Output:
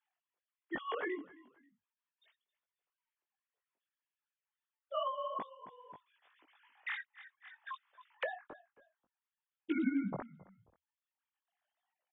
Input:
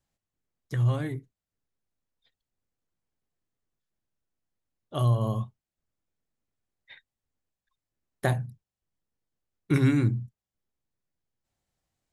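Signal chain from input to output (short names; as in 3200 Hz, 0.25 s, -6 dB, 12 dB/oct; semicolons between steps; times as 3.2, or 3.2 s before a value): sine-wave speech; low shelf 210 Hz -10.5 dB; compressor 2.5:1, threshold -43 dBFS, peak gain reduction 16.5 dB; chorus voices 4, 1 Hz, delay 19 ms, depth 3.9 ms; frequency-shifting echo 0.268 s, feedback 33%, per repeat -42 Hz, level -21 dB; 5.07–8.47 three-band squash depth 100%; gain +8 dB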